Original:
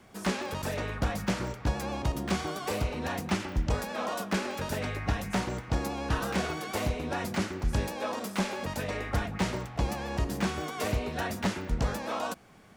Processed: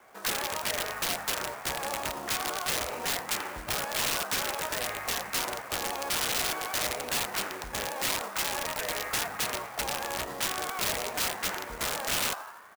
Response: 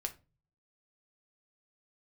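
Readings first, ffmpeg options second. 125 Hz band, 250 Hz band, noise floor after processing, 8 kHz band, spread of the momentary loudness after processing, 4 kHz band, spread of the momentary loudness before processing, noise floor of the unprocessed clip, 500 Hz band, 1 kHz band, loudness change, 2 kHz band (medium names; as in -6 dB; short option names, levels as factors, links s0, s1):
-14.5 dB, -11.5 dB, -43 dBFS, +10.5 dB, 5 LU, +8.0 dB, 3 LU, -45 dBFS, -2.5 dB, +1.5 dB, +2.0 dB, +3.5 dB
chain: -filter_complex "[0:a]acrossover=split=460 2100:gain=0.0891 1 0.0794[s0][s1][s2];[s0][s1][s2]amix=inputs=3:normalize=0,asplit=2[s3][s4];[s4]asplit=7[s5][s6][s7][s8][s9][s10][s11];[s5]adelay=84,afreqshift=81,volume=0.282[s12];[s6]adelay=168,afreqshift=162,volume=0.172[s13];[s7]adelay=252,afreqshift=243,volume=0.105[s14];[s8]adelay=336,afreqshift=324,volume=0.0638[s15];[s9]adelay=420,afreqshift=405,volume=0.0389[s16];[s10]adelay=504,afreqshift=486,volume=0.0237[s17];[s11]adelay=588,afreqshift=567,volume=0.0145[s18];[s12][s13][s14][s15][s16][s17][s18]amix=inputs=7:normalize=0[s19];[s3][s19]amix=inputs=2:normalize=0,aeval=exprs='(mod(35.5*val(0)+1,2)-1)/35.5':c=same,acrusher=bits=3:mode=log:mix=0:aa=0.000001,highshelf=f=2600:g=7,volume=1.5"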